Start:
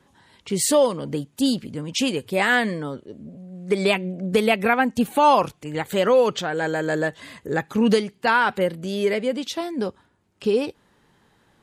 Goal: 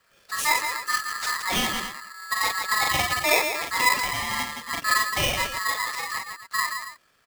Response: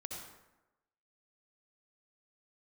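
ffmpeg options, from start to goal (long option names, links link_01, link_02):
-af "aecho=1:1:60|78|269|441:0.708|0.422|0.531|0.251,atempo=1.6,aeval=exprs='val(0)*sgn(sin(2*PI*1500*n/s))':channel_layout=same,volume=-6.5dB"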